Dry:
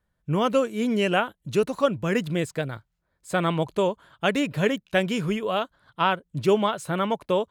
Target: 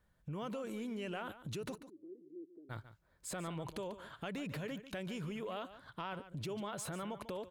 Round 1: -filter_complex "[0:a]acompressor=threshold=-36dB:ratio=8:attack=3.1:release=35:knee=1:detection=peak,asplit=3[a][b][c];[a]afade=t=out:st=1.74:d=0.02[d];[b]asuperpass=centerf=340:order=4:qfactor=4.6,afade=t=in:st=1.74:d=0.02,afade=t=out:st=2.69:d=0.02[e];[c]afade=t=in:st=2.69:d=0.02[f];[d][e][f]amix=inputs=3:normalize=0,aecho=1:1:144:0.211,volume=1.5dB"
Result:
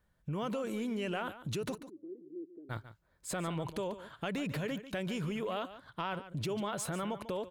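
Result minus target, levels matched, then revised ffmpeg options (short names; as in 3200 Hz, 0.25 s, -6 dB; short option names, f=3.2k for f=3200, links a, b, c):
compressor: peak gain reduction -5.5 dB
-filter_complex "[0:a]acompressor=threshold=-42.5dB:ratio=8:attack=3.1:release=35:knee=1:detection=peak,asplit=3[a][b][c];[a]afade=t=out:st=1.74:d=0.02[d];[b]asuperpass=centerf=340:order=4:qfactor=4.6,afade=t=in:st=1.74:d=0.02,afade=t=out:st=2.69:d=0.02[e];[c]afade=t=in:st=2.69:d=0.02[f];[d][e][f]amix=inputs=3:normalize=0,aecho=1:1:144:0.211,volume=1.5dB"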